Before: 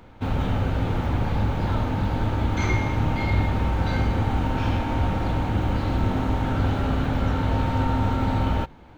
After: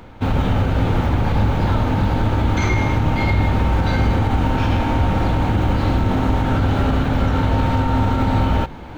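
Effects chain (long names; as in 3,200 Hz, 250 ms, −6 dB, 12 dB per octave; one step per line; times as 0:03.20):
reversed playback
upward compression, threshold −33 dBFS
reversed playback
boost into a limiter +14.5 dB
level −7.5 dB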